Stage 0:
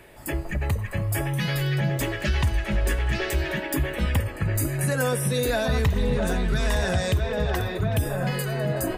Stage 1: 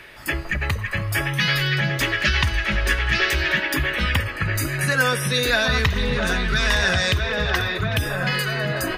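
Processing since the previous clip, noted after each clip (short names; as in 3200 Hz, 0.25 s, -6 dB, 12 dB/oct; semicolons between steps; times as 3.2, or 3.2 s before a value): band shelf 2600 Hz +11 dB 2.7 oct; notch 7600 Hz, Q 15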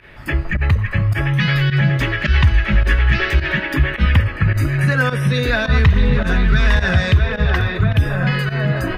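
tone controls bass +9 dB, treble -13 dB; pump 106 bpm, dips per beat 1, -16 dB, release 76 ms; gain +1.5 dB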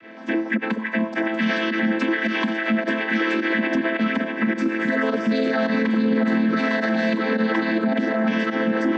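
chord vocoder minor triad, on A3; limiter -14 dBFS, peak gain reduction 10.5 dB; gain +1.5 dB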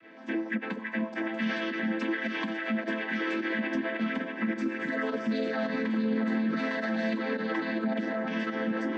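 flange 0.4 Hz, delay 6.1 ms, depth 8.6 ms, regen -45%; gain -5 dB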